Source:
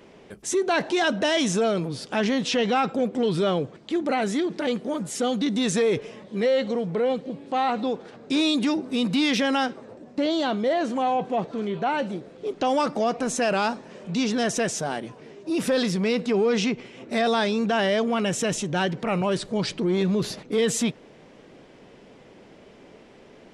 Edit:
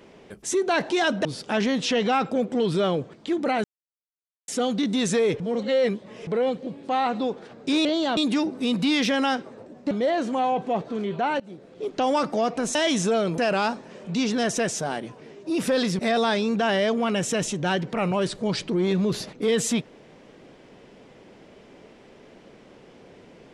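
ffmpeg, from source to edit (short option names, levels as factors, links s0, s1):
-filter_complex "[0:a]asplit=13[s0][s1][s2][s3][s4][s5][s6][s7][s8][s9][s10][s11][s12];[s0]atrim=end=1.252[s13];[s1]atrim=start=1.878:end=4.27,asetpts=PTS-STARTPTS,afade=t=out:st=2.388:d=0.004:c=hsin[s14];[s2]atrim=start=4.27:end=5.11,asetpts=PTS-STARTPTS,volume=0[s15];[s3]atrim=start=5.11:end=6.032,asetpts=PTS-STARTPTS,afade=t=in:d=0.004:c=hsin[s16];[s4]atrim=start=6.028:end=6.902,asetpts=PTS-STARTPTS,areverse[s17];[s5]atrim=start=6.898:end=8.482[s18];[s6]atrim=start=10.218:end=10.542[s19];[s7]atrim=start=8.478:end=10.222[s20];[s8]atrim=start=10.538:end=12.03,asetpts=PTS-STARTPTS,afade=t=out:st=1.488:d=0.004:c=hsin:silence=0.0794328[s21];[s9]atrim=start=12.03:end=13.382,asetpts=PTS-STARTPTS,afade=t=in:d=0.61:c=qsin:silence=0.0794328[s22];[s10]atrim=start=1.248:end=1.882[s23];[s11]atrim=start=13.378:end=15.992[s24];[s12]atrim=start=17.088[s25];[s14][s15][s16]concat=n=3:v=0:a=1[s26];[s13][s26]acrossfade=d=0.004:c1=hsin:c2=hsin[s27];[s27][s17]acrossfade=d=0.004:c1=hsin:c2=hsin[s28];[s28][s18]acrossfade=d=0.004:c1=hsin:c2=hsin[s29];[s29][s19]acrossfade=d=0.004:c1=hsin:c2=hsin[s30];[s30][s20]acrossfade=d=0.004:c1=hsin:c2=hsin[s31];[s21][s22]concat=n=2:v=0:a=1[s32];[s31][s32]acrossfade=d=0.004:c1=hsin:c2=hsin[s33];[s33][s23]acrossfade=d=0.004:c1=hsin:c2=hsin[s34];[s34][s24]acrossfade=d=0.004:c1=hsin:c2=hsin[s35];[s35][s25]acrossfade=d=0.004:c1=hsin:c2=hsin"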